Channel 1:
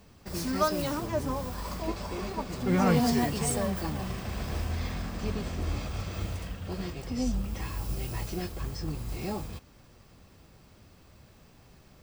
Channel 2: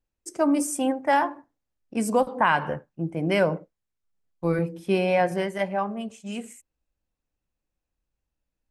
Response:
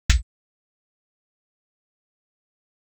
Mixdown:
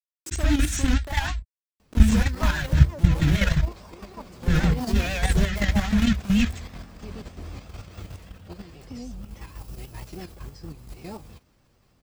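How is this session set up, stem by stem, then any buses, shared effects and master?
−2.5 dB, 1.80 s, no send, no processing
−4.0 dB, 0.00 s, send −4.5 dB, downward compressor 10 to 1, threshold −28 dBFS, peak gain reduction 13 dB; reverb reduction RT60 1.9 s; log-companded quantiser 2 bits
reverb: on, pre-delay 46 ms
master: pitch vibrato 6.3 Hz 87 cents; output level in coarse steps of 9 dB

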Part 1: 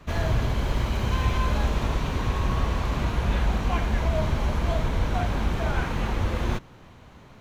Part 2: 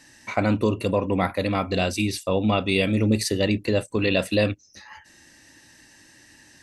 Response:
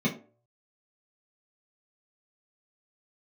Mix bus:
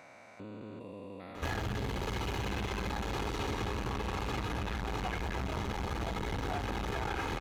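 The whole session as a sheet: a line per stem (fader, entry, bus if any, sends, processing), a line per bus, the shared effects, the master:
+3.0 dB, 1.35 s, send −23.5 dB, comb filter 2.4 ms, depth 71%; soft clipping −24.5 dBFS, distortion −8 dB
−15.0 dB, 0.00 s, no send, spectrum averaged block by block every 400 ms; downward compressor 1.5 to 1, threshold −31 dBFS, peak gain reduction 5 dB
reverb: on, RT60 0.45 s, pre-delay 3 ms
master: high-pass filter 160 Hz 6 dB per octave; downward compressor, threshold −31 dBFS, peak gain reduction 6.5 dB

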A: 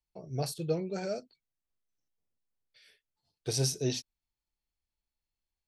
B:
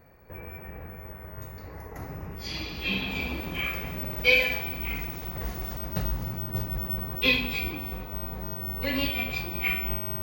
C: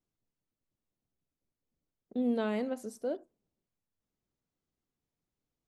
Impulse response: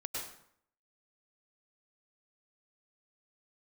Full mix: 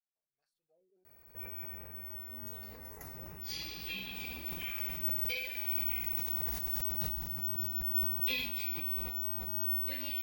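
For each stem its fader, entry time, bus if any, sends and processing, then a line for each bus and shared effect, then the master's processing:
−19.5 dB, 0.00 s, no send, LFO wah 0.72 Hz 330–1,800 Hz, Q 6.5
+2.0 dB, 1.05 s, no send, downward compressor 6 to 1, threshold −32 dBFS, peak gain reduction 15.5 dB
−11.5 dB, 0.15 s, no send, no processing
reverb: not used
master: first-order pre-emphasis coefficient 0.8; level that may fall only so fast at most 34 dB per second

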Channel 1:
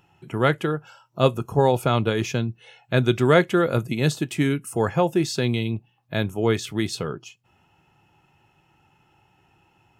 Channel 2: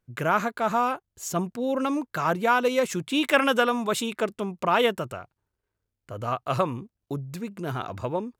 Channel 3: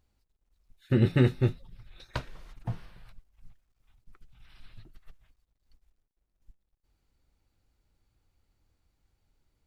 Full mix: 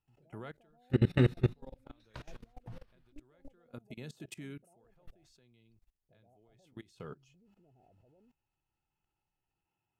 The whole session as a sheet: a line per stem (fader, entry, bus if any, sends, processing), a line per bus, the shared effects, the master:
−11.0 dB, 0.00 s, no send, downward compressor 8 to 1, threshold −20 dBFS, peak gain reduction 9.5 dB; automatic ducking −15 dB, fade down 0.30 s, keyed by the third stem
−17.5 dB, 0.00 s, no send, Butterworth low-pass 820 Hz 96 dB per octave; downward compressor 5 to 1, threshold −30 dBFS, peak gain reduction 11 dB; brickwall limiter −27.5 dBFS, peak gain reduction 5 dB
−1.0 dB, 0.00 s, muted 0:03.73–0:04.84, no send, no processing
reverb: not used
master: output level in coarse steps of 22 dB

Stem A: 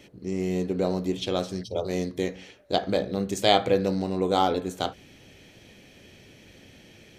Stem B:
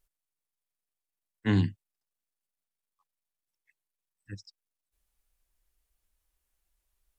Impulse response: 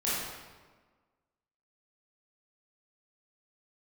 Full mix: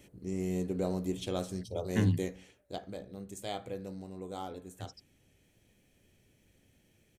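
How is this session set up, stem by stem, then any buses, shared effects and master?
0:02.22 −8.5 dB → 0:02.94 −19 dB, 0.00 s, no send, high shelf with overshoot 6,500 Hz +8.5 dB, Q 1.5
−0.5 dB, 0.50 s, no send, spectral dynamics exaggerated over time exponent 1.5; downward compressor, threshold −28 dBFS, peak gain reduction 7.5 dB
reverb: not used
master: low-shelf EQ 140 Hz +9 dB

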